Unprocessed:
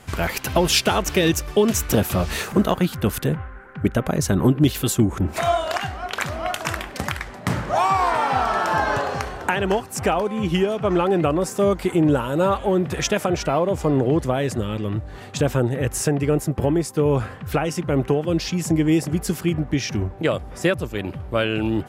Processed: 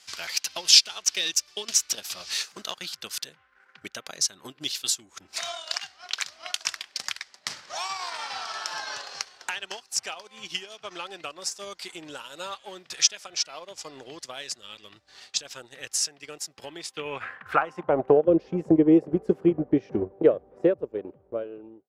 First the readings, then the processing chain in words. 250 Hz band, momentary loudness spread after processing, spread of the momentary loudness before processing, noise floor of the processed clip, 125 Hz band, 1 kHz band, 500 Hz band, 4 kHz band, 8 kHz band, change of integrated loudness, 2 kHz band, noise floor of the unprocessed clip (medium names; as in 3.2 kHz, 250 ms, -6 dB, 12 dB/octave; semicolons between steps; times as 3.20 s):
-7.5 dB, 18 LU, 7 LU, -62 dBFS, -18.0 dB, -12.0 dB, -7.0 dB, +2.5 dB, +2.0 dB, -4.5 dB, -8.0 dB, -38 dBFS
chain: fade out at the end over 2.04 s; band-pass sweep 5 kHz -> 450 Hz, 16.60–18.30 s; transient shaper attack +3 dB, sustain -9 dB; trim +6 dB